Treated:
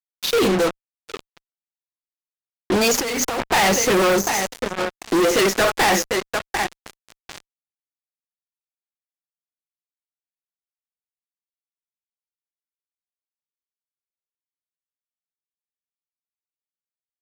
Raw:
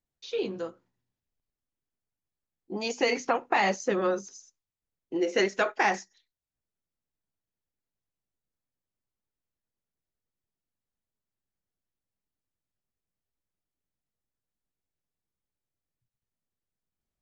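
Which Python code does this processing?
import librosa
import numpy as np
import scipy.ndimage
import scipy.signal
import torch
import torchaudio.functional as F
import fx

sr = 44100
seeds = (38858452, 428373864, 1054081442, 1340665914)

y = fx.echo_feedback(x, sr, ms=746, feedback_pct=40, wet_db=-19.0)
y = fx.fuzz(y, sr, gain_db=48.0, gate_db=-43.0)
y = fx.over_compress(y, sr, threshold_db=-21.0, ratio=-1.0, at=(2.94, 3.43))
y = y * 10.0 ** (-2.0 / 20.0)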